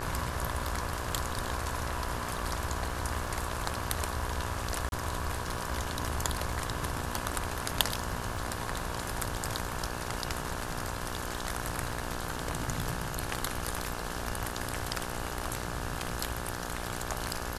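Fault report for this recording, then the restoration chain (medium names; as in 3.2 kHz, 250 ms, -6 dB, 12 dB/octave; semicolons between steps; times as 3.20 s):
buzz 60 Hz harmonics 29 -39 dBFS
crackle 22 per s -41 dBFS
4.89–4.92 s: dropout 31 ms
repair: de-click; de-hum 60 Hz, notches 29; interpolate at 4.89 s, 31 ms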